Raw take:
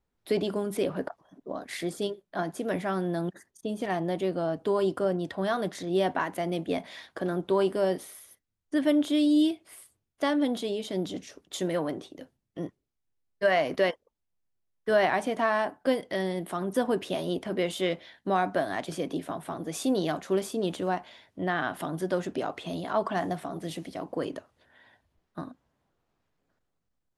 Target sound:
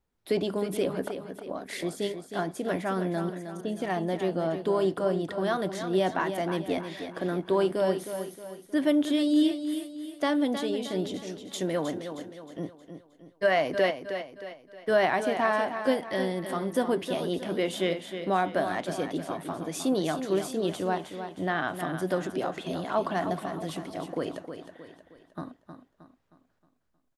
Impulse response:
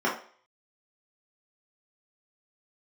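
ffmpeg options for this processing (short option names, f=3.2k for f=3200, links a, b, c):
-af "aecho=1:1:313|626|939|1252|1565:0.355|0.153|0.0656|0.0282|0.0121"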